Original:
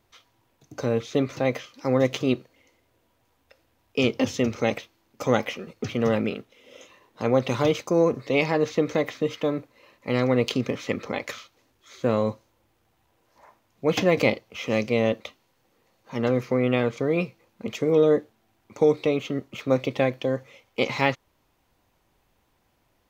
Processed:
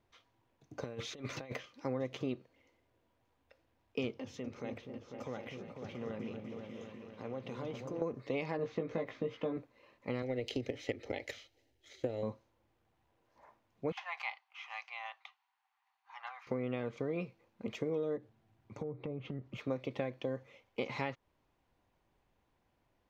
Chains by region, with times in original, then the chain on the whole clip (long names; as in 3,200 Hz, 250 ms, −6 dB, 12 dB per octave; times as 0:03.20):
0:00.84–0:01.56: tilt shelving filter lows −4.5 dB, about 1,200 Hz + compressor whose output falls as the input rises −32 dBFS, ratio −0.5
0:04.14–0:08.02: downward compressor 2 to 1, threshold −40 dBFS + echo whose low-pass opens from repeat to repeat 248 ms, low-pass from 400 Hz, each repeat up 2 octaves, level −3 dB
0:08.57–0:09.57: high-shelf EQ 4,500 Hz −11.5 dB + double-tracking delay 18 ms −3 dB
0:10.22–0:12.23: transient designer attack +9 dB, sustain +3 dB + phaser with its sweep stopped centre 450 Hz, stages 4 + comb filter 1 ms, depth 31%
0:13.92–0:16.47: Chebyshev high-pass filter 770 Hz, order 6 + high-shelf EQ 4,600 Hz −12 dB
0:18.17–0:19.57: treble cut that deepens with the level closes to 1,100 Hz, closed at −18 dBFS + parametric band 120 Hz +12.5 dB 1.1 octaves + downward compressor 4 to 1, threshold −31 dBFS
whole clip: low-pass filter 2,700 Hz 6 dB per octave; notch filter 1,300 Hz, Q 24; downward compressor 6 to 1, threshold −25 dBFS; level −7.5 dB